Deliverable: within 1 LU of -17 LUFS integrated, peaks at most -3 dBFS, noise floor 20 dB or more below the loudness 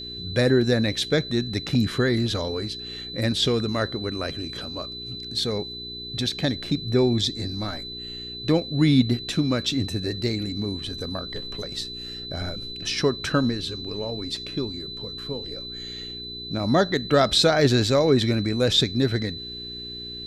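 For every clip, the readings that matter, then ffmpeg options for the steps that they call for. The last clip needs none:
hum 60 Hz; harmonics up to 420 Hz; hum level -43 dBFS; steady tone 4000 Hz; tone level -34 dBFS; loudness -24.5 LUFS; peak -6.5 dBFS; loudness target -17.0 LUFS
-> -af "bandreject=f=60:t=h:w=4,bandreject=f=120:t=h:w=4,bandreject=f=180:t=h:w=4,bandreject=f=240:t=h:w=4,bandreject=f=300:t=h:w=4,bandreject=f=360:t=h:w=4,bandreject=f=420:t=h:w=4"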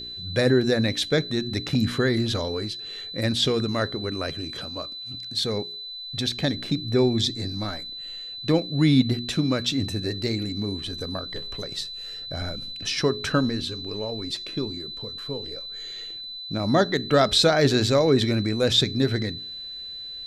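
hum none; steady tone 4000 Hz; tone level -34 dBFS
-> -af "bandreject=f=4k:w=30"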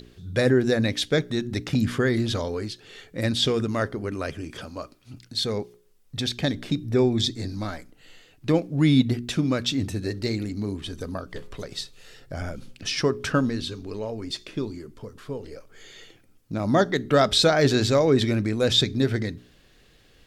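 steady tone none; loudness -24.5 LUFS; peak -7.0 dBFS; loudness target -17.0 LUFS
-> -af "volume=7.5dB,alimiter=limit=-3dB:level=0:latency=1"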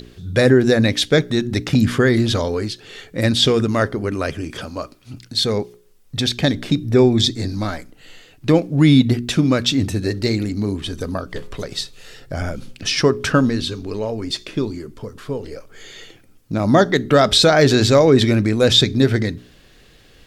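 loudness -17.5 LUFS; peak -3.0 dBFS; noise floor -49 dBFS

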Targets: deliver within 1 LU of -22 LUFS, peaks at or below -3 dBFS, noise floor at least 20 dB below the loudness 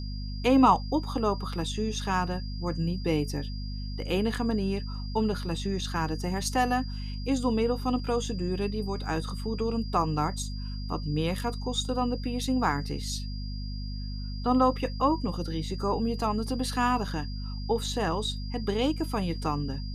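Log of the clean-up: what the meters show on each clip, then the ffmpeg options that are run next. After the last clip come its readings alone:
hum 50 Hz; harmonics up to 250 Hz; hum level -32 dBFS; steady tone 4800 Hz; tone level -45 dBFS; loudness -29.0 LUFS; peak -8.5 dBFS; loudness target -22.0 LUFS
-> -af "bandreject=f=50:t=h:w=4,bandreject=f=100:t=h:w=4,bandreject=f=150:t=h:w=4,bandreject=f=200:t=h:w=4,bandreject=f=250:t=h:w=4"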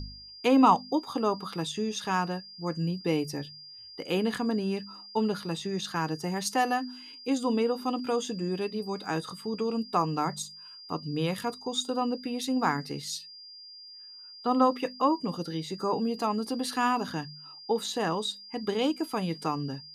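hum none; steady tone 4800 Hz; tone level -45 dBFS
-> -af "bandreject=f=4.8k:w=30"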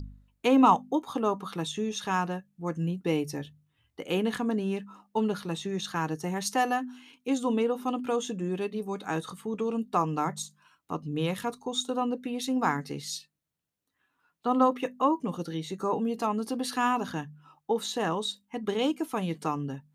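steady tone none; loudness -30.0 LUFS; peak -8.5 dBFS; loudness target -22.0 LUFS
-> -af "volume=8dB,alimiter=limit=-3dB:level=0:latency=1"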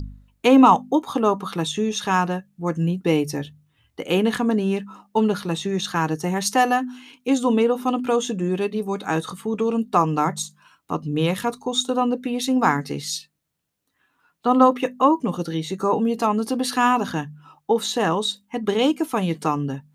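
loudness -22.0 LUFS; peak -3.0 dBFS; noise floor -70 dBFS

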